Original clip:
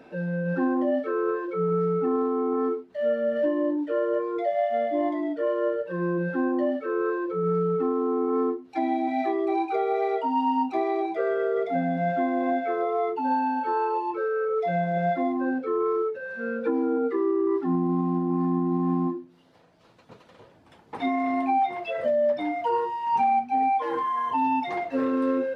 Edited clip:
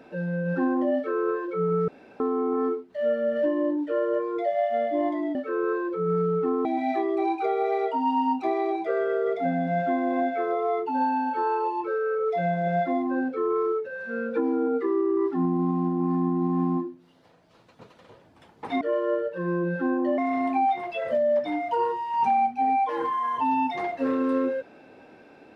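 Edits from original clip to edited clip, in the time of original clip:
0:01.88–0:02.20: fill with room tone
0:05.35–0:06.72: move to 0:21.11
0:08.02–0:08.95: remove

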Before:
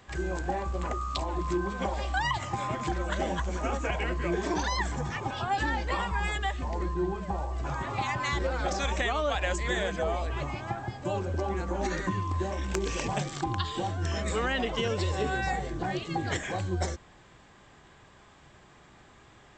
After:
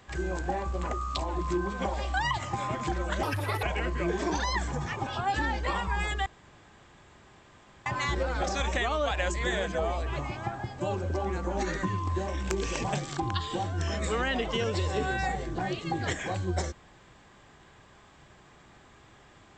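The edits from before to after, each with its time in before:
0:03.23–0:03.87: play speed 160%
0:06.50–0:08.10: fill with room tone

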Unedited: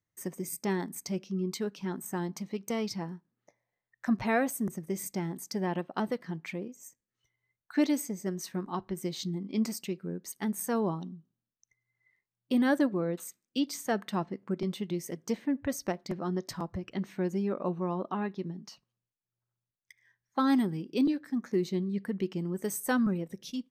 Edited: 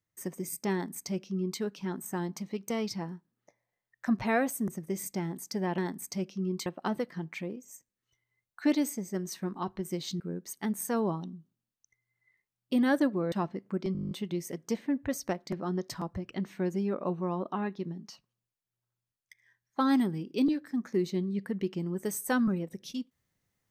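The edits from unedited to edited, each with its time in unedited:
0:00.72–0:01.60: duplicate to 0:05.78
0:09.32–0:09.99: remove
0:13.11–0:14.09: remove
0:14.70: stutter 0.02 s, 10 plays

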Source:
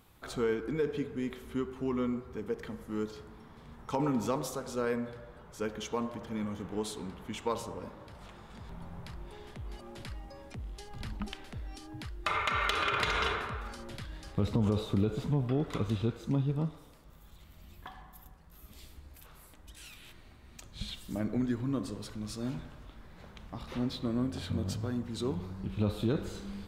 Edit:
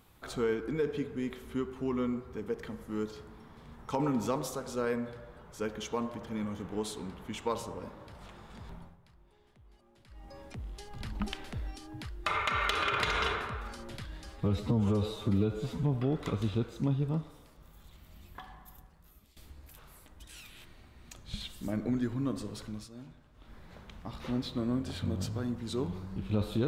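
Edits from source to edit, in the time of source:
0:08.70–0:10.35: duck −17 dB, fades 0.27 s
0:11.15–0:11.71: clip gain +3.5 dB
0:14.26–0:15.31: time-stretch 1.5×
0:18.03–0:18.84: fade out equal-power, to −17.5 dB
0:22.17–0:23.01: duck −12 dB, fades 0.20 s

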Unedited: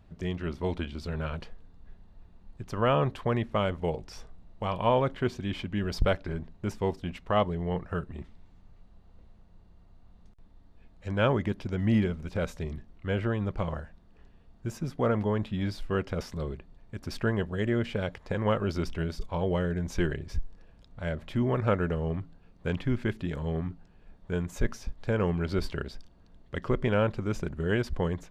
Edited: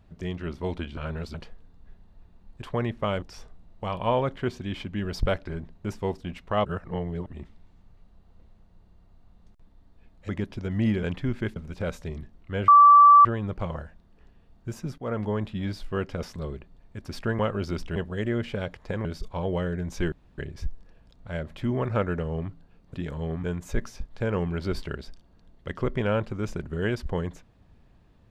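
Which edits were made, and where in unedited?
0:00.97–0:01.34: reverse
0:02.62–0:03.14: remove
0:03.74–0:04.01: remove
0:07.44–0:08.05: reverse
0:11.08–0:11.37: remove
0:13.23: insert tone 1,160 Hz −9.5 dBFS 0.57 s
0:14.96–0:15.33: fade in equal-power, from −13 dB
0:18.46–0:19.03: move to 0:17.37
0:20.10: splice in room tone 0.26 s
0:22.66–0:23.19: move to 0:12.11
0:23.69–0:24.31: remove

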